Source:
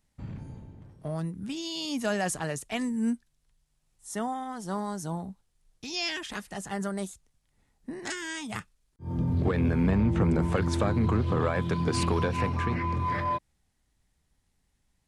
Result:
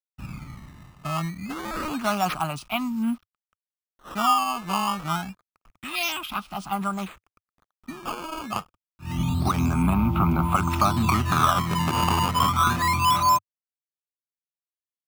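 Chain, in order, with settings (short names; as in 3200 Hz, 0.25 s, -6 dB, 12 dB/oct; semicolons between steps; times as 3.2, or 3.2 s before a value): bit-crush 10-bit; dynamic EQ 770 Hz, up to +6 dB, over -47 dBFS, Q 1.8; fixed phaser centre 1800 Hz, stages 6; decimation with a swept rate 13×, swing 160% 0.27 Hz; thirty-one-band EQ 100 Hz -9 dB, 1250 Hz +12 dB, 2500 Hz +6 dB; gain +5 dB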